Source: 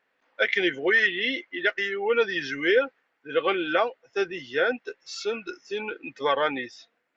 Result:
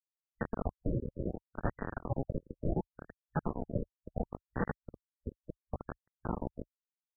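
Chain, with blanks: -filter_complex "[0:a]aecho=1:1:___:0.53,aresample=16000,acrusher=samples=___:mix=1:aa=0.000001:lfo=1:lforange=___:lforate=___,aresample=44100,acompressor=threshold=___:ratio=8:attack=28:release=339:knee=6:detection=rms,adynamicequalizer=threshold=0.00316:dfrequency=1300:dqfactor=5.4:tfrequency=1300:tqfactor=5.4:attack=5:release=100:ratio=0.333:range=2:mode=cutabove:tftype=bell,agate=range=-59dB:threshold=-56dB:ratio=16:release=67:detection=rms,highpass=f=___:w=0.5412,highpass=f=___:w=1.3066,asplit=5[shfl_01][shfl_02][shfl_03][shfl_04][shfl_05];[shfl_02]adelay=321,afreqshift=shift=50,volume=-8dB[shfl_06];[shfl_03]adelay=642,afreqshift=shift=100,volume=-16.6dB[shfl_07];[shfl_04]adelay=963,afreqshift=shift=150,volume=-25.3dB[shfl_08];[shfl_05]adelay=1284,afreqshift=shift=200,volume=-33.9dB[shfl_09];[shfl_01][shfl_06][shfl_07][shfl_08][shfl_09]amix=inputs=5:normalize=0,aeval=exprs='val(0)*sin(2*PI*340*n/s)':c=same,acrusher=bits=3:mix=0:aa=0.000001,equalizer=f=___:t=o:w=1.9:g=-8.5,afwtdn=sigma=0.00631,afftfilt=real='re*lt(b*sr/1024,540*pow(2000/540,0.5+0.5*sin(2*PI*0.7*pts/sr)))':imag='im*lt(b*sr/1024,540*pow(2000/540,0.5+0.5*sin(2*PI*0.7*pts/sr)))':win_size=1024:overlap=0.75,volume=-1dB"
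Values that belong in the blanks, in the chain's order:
5.6, 16, 16, 0.56, -21dB, 63, 63, 910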